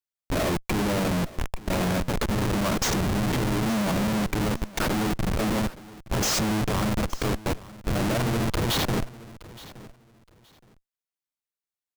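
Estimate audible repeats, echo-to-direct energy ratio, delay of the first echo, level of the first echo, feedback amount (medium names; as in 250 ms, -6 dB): 2, -19.0 dB, 870 ms, -19.0 dB, 22%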